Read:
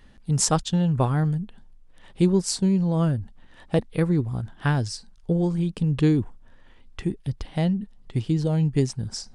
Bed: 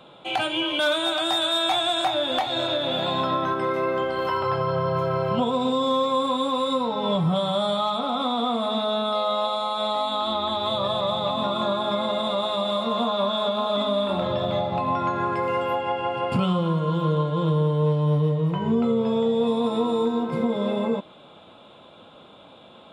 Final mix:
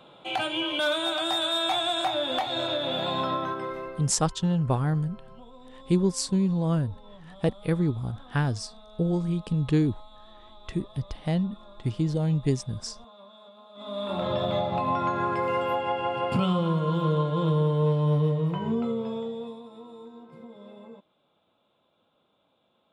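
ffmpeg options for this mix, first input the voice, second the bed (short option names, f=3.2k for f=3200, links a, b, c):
-filter_complex "[0:a]adelay=3700,volume=-3dB[a];[1:a]volume=21dB,afade=t=out:st=3.27:d=0.84:silence=0.0707946,afade=t=in:st=13.75:d=0.58:silence=0.0595662,afade=t=out:st=18.25:d=1.39:silence=0.1[b];[a][b]amix=inputs=2:normalize=0"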